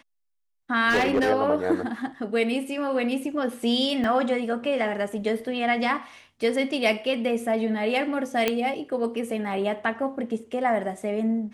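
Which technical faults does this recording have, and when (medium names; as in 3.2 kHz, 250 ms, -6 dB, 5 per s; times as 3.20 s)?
0.89–1.31 s: clipped -17.5 dBFS
4.04 s: dropout 2.5 ms
8.48 s: pop -8 dBFS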